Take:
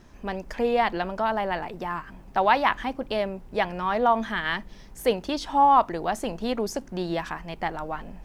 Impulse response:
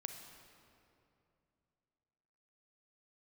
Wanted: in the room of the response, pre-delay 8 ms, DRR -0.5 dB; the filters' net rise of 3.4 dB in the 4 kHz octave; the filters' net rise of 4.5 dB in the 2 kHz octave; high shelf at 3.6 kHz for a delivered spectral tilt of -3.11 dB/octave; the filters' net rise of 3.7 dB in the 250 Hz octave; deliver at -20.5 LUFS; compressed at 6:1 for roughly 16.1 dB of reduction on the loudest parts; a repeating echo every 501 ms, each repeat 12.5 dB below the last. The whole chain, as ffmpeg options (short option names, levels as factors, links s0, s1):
-filter_complex "[0:a]equalizer=f=250:t=o:g=4.5,equalizer=f=2000:t=o:g=5.5,highshelf=f=3600:g=-4.5,equalizer=f=4000:t=o:g=5,acompressor=threshold=0.0282:ratio=6,aecho=1:1:501|1002|1503:0.237|0.0569|0.0137,asplit=2[s0][s1];[1:a]atrim=start_sample=2205,adelay=8[s2];[s1][s2]afir=irnorm=-1:irlink=0,volume=1.41[s3];[s0][s3]amix=inputs=2:normalize=0,volume=3.55"